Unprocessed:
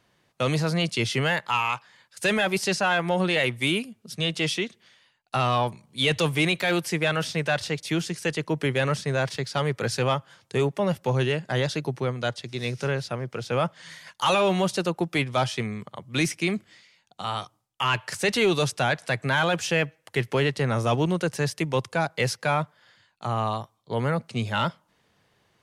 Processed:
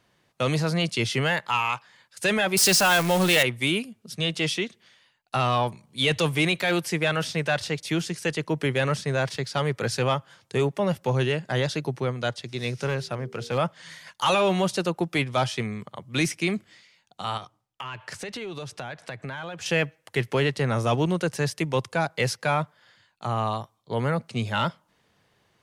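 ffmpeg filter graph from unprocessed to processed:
ffmpeg -i in.wav -filter_complex "[0:a]asettb=1/sr,asplit=3[link_01][link_02][link_03];[link_01]atrim=end=2.574[link_04];[link_02]atrim=start=2.57:end=3.43,asetpts=PTS-STARTPTS,afade=type=in:duration=0.004:curve=qsin,afade=type=out:start_time=0.856:duration=0.004:curve=qsin,aeval=exprs='val(0)+0.5*0.0422*sgn(val(0))':channel_layout=same,highshelf=frequency=4300:gain=11.5[link_05];[link_03]atrim=start=3.426[link_06];[link_04][link_05]acrossfade=duration=0.004:curve1=hsin:curve2=qsin[link_07];[link_07][link_06]acrossfade=duration=0.004:curve1=qsin:curve2=hsin,asettb=1/sr,asplit=3[link_08][link_09][link_10];[link_08]atrim=end=12.864[link_11];[link_09]atrim=start=12.86:end=13.58,asetpts=PTS-STARTPTS,afade=type=in:duration=0.004:curve=qsin,afade=type=out:start_time=0.716:duration=0.004:curve=qsin,bandreject=frequency=78.47:width_type=h:width=4,bandreject=frequency=156.94:width_type=h:width=4,bandreject=frequency=235.41:width_type=h:width=4,bandreject=frequency=313.88:width_type=h:width=4,bandreject=frequency=392.35:width_type=h:width=4,bandreject=frequency=470.82:width_type=h:width=4,asoftclip=type=hard:threshold=-21dB[link_12];[link_10]atrim=start=13.576[link_13];[link_11][link_12]acrossfade=duration=0.004:curve1=hsin:curve2=qsin[link_14];[link_14][link_13]acrossfade=duration=0.004:curve1=qsin:curve2=hsin,asettb=1/sr,asplit=3[link_15][link_16][link_17];[link_15]atrim=end=17.374[link_18];[link_16]atrim=start=17.37:end=19.66,asetpts=PTS-STARTPTS,afade=type=in:duration=0.004:curve=qsin,afade=type=out:start_time=2.286:duration=0.004:curve=qsin,lowpass=frequency=3800:poles=1,acompressor=threshold=-31dB:ratio=12:attack=3.2:release=140:knee=1:detection=peak[link_19];[link_17]atrim=start=19.656[link_20];[link_18][link_19]acrossfade=duration=0.004:curve1=hsin:curve2=qsin[link_21];[link_21][link_20]acrossfade=duration=0.004:curve1=qsin:curve2=hsin" out.wav

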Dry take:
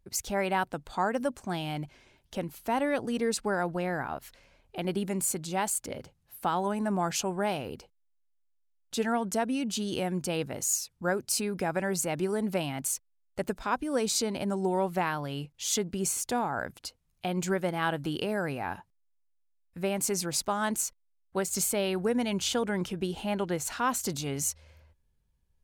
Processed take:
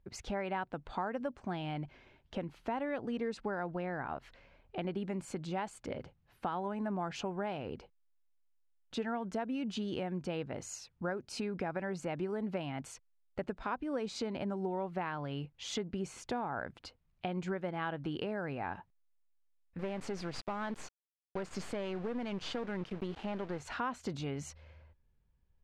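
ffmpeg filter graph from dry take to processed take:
ffmpeg -i in.wav -filter_complex "[0:a]asettb=1/sr,asplit=3[link_01][link_02][link_03];[link_01]atrim=end=19.794[link_04];[link_02]atrim=start=19.79:end=23.6,asetpts=PTS-STARTPTS,afade=type=in:duration=0.004:curve=qsin,afade=type=out:start_time=3.806:duration=0.004:curve=qsin,equalizer=frequency=4700:width=7.4:gain=7,aeval=exprs='(tanh(22.4*val(0)+0.5)-tanh(0.5))/22.4':channel_layout=same,aeval=exprs='val(0)*gte(abs(val(0)),0.00841)':channel_layout=same[link_05];[link_03]atrim=start=23.596[link_06];[link_04][link_05]acrossfade=duration=0.004:curve1=hsin:curve2=qsin[link_07];[link_07][link_06]acrossfade=duration=0.004:curve1=qsin:curve2=hsin,lowpass=2800,acompressor=threshold=-35dB:ratio=3" out.wav

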